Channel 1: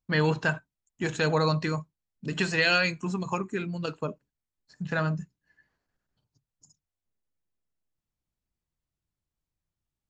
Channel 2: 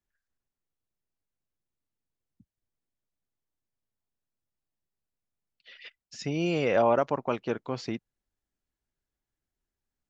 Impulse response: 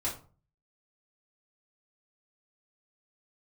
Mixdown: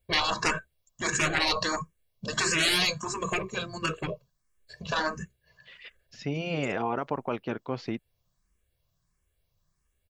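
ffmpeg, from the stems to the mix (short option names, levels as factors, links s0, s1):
-filter_complex "[0:a]aecho=1:1:1.8:0.88,aeval=exprs='0.398*sin(PI/2*2.51*val(0)/0.398)':c=same,asplit=2[s0][s1];[s1]afreqshift=1.5[s2];[s0][s2]amix=inputs=2:normalize=1,volume=0.944[s3];[1:a]lowpass=4000,alimiter=limit=0.15:level=0:latency=1,volume=1.06[s4];[s3][s4]amix=inputs=2:normalize=0,afftfilt=real='re*lt(hypot(re,im),0.355)':imag='im*lt(hypot(re,im),0.355)':win_size=1024:overlap=0.75"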